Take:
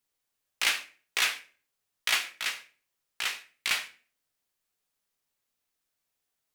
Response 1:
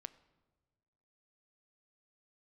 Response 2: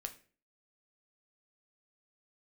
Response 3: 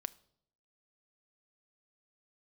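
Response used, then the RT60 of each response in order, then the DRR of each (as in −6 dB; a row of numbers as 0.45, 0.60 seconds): 2; non-exponential decay, 0.40 s, 0.70 s; 14.5, 5.5, 16.5 decibels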